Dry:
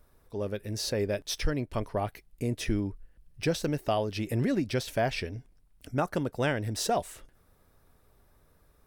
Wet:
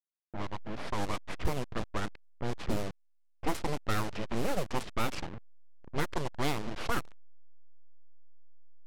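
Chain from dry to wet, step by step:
hold until the input has moved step −33 dBFS
full-wave rectification
low-pass that shuts in the quiet parts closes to 900 Hz, open at −23.5 dBFS

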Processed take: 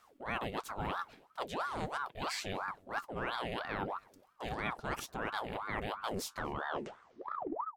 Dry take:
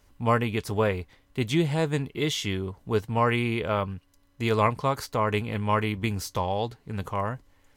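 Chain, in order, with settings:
turntable brake at the end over 1.59 s
reversed playback
downward compressor 5 to 1, threshold −34 dBFS, peak gain reduction 15 dB
reversed playback
slap from a distant wall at 41 metres, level −28 dB
ring modulator whose carrier an LFO sweeps 790 Hz, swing 65%, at 3 Hz
level +1 dB

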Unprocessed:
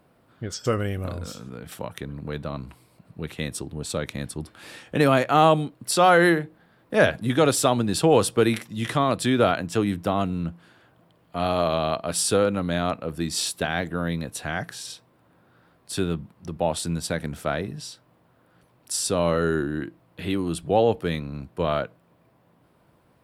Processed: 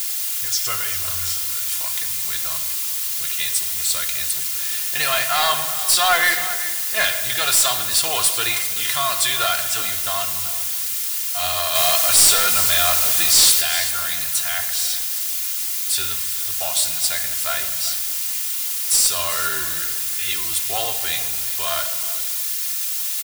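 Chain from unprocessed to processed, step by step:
phase distortion by the signal itself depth 0.072 ms
flanger 1.5 Hz, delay 9.5 ms, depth 4.7 ms, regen +77%
in parallel at −4 dB: bit-depth reduction 6 bits, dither triangular
on the sum: spectral tilt +2 dB per octave
0:11.75–0:13.61: leveller curve on the samples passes 2
guitar amp tone stack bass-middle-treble 10-0-10
comb filter 2.9 ms, depth 61%
on a send: single-tap delay 385 ms −16.5 dB
on the sum: rectangular room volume 2,800 cubic metres, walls mixed, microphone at 0.87 metres
soft clipping −17 dBFS, distortion −11 dB
level +8 dB

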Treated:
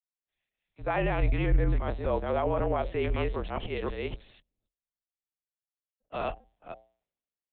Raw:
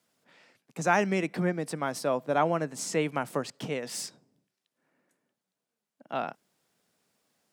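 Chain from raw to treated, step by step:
delay that plays each chunk backwards 259 ms, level −0.5 dB
parametric band 1,500 Hz −6 dB 0.47 octaves
hum removal 117.3 Hz, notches 7
linear-prediction vocoder at 8 kHz pitch kept
frequency shifter −45 Hz
brickwall limiter −22 dBFS, peak gain reduction 9.5 dB
multiband upward and downward expander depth 100%
level +1.5 dB

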